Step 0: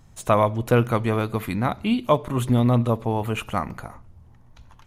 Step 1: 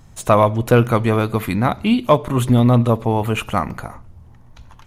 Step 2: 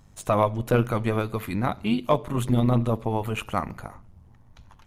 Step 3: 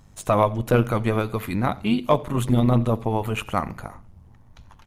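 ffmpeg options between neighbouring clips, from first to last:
-af "acontrast=27,volume=1dB"
-af "tremolo=f=100:d=0.571,volume=-5.5dB"
-af "aecho=1:1:88:0.0668,volume=2.5dB"

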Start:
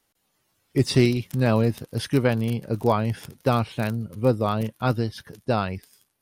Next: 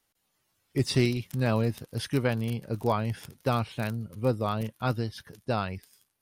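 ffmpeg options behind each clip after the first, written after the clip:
-af "equalizer=f=330:w=0.45:g=-3,volume=-3.5dB"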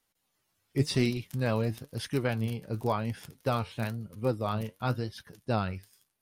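-af "flanger=delay=3.7:depth=7.9:regen=69:speed=0.96:shape=triangular,volume=2dB"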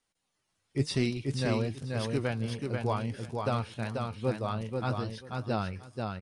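-af "aecho=1:1:487|974|1461:0.631|0.107|0.0182,aresample=22050,aresample=44100,volume=-2dB"

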